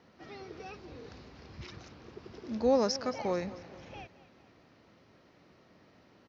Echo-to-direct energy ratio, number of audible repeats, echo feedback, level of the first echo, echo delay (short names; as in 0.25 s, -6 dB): -16.0 dB, 3, 49%, -17.0 dB, 0.222 s